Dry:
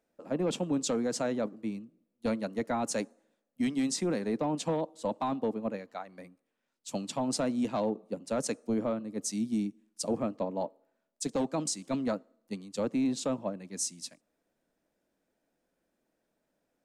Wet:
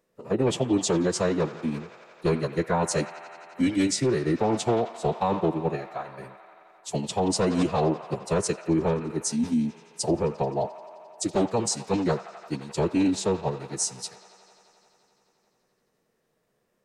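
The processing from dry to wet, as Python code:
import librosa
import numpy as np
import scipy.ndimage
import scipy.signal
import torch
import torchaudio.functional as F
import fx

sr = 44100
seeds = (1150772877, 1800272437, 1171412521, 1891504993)

y = fx.echo_wet_bandpass(x, sr, ms=87, feedback_pct=84, hz=1600.0, wet_db=-11.5)
y = fx.pitch_keep_formants(y, sr, semitones=-5.5)
y = y * librosa.db_to_amplitude(7.0)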